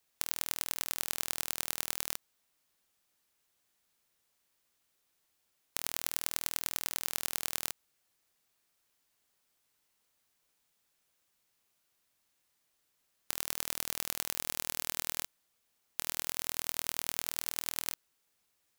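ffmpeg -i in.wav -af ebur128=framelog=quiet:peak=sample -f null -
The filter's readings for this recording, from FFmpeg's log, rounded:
Integrated loudness:
  I:         -34.7 LUFS
  Threshold: -44.8 LUFS
Loudness range:
  LRA:         8.7 LU
  Threshold: -57.4 LUFS
  LRA low:   -44.0 LUFS
  LRA high:  -35.2 LUFS
Sample peak:
  Peak:       -3.3 dBFS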